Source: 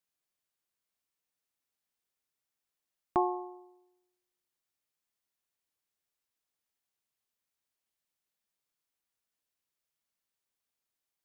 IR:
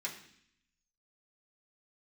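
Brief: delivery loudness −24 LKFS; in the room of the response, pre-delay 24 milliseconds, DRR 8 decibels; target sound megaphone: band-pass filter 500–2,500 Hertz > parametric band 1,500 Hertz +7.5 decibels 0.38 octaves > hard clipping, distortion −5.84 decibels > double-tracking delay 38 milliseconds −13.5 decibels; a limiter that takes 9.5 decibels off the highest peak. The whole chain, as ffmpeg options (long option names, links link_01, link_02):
-filter_complex "[0:a]alimiter=level_in=0.5dB:limit=-24dB:level=0:latency=1,volume=-0.5dB,asplit=2[link_01][link_02];[1:a]atrim=start_sample=2205,adelay=24[link_03];[link_02][link_03]afir=irnorm=-1:irlink=0,volume=-9.5dB[link_04];[link_01][link_04]amix=inputs=2:normalize=0,highpass=500,lowpass=2500,equalizer=frequency=1500:width_type=o:width=0.38:gain=7.5,asoftclip=type=hard:threshold=-38.5dB,asplit=2[link_05][link_06];[link_06]adelay=38,volume=-13.5dB[link_07];[link_05][link_07]amix=inputs=2:normalize=0,volume=20.5dB"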